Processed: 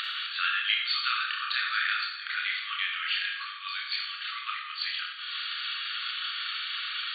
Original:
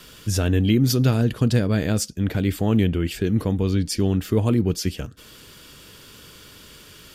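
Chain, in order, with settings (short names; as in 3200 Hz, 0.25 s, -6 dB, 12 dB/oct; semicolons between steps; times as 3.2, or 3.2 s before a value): chorus voices 4, 0.35 Hz, delay 28 ms, depth 3.5 ms; upward compressor, threshold -31 dBFS; FFT band-pass 1100–4600 Hz; Schroeder reverb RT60 0.97 s, DRR 2 dB; gain +8.5 dB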